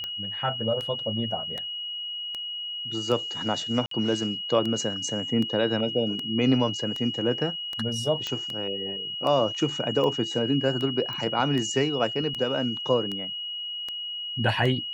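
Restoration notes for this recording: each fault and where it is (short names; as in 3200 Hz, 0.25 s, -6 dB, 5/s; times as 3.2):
tick 78 rpm -19 dBFS
tone 2900 Hz -31 dBFS
3.86–3.91 gap 53 ms
8.27 pop -16 dBFS
11.13 pop -22 dBFS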